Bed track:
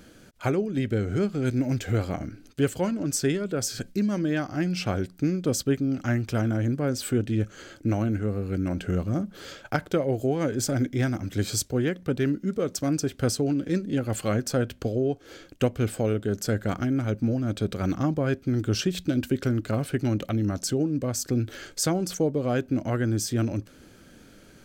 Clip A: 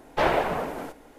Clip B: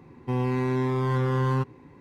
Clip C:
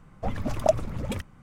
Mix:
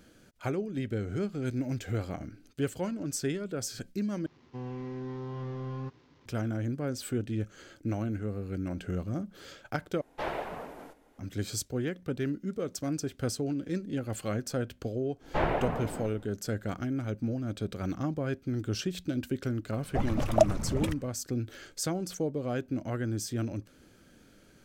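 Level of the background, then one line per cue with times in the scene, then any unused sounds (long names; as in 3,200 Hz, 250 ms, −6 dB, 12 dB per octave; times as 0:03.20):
bed track −7 dB
0:04.26: overwrite with B −12.5 dB + linear delta modulator 32 kbit/s, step −45.5 dBFS
0:10.01: overwrite with A −12 dB
0:15.17: mix in A −7 dB, fades 0.10 s + bass and treble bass +10 dB, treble −11 dB
0:19.72: mix in C −0.5 dB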